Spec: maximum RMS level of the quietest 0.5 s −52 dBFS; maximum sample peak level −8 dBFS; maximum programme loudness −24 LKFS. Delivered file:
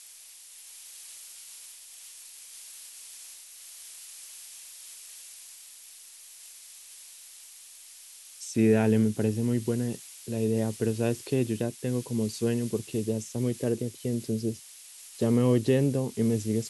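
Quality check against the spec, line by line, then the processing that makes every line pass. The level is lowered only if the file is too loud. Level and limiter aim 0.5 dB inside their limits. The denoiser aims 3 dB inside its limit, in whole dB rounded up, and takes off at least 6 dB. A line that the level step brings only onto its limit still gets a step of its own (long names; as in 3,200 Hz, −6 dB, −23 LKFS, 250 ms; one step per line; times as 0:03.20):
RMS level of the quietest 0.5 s −49 dBFS: out of spec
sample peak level −11.5 dBFS: in spec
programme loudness −28.0 LKFS: in spec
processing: broadband denoise 6 dB, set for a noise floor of −49 dBFS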